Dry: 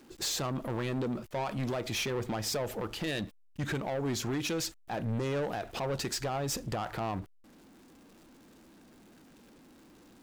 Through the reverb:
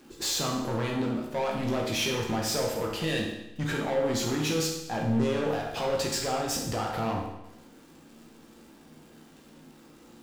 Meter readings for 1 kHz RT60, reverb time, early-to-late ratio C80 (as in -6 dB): 0.90 s, 0.90 s, 6.0 dB